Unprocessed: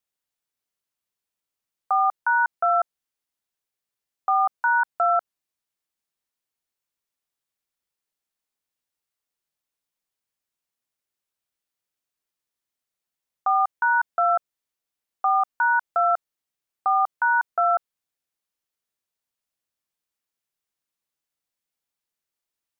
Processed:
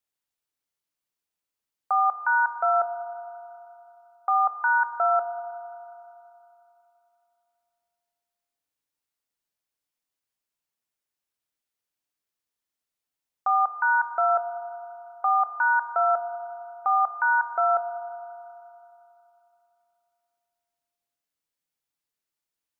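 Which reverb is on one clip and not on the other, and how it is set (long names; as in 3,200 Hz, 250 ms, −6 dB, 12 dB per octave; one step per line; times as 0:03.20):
feedback delay network reverb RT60 3 s, high-frequency decay 0.85×, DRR 8 dB
level −2 dB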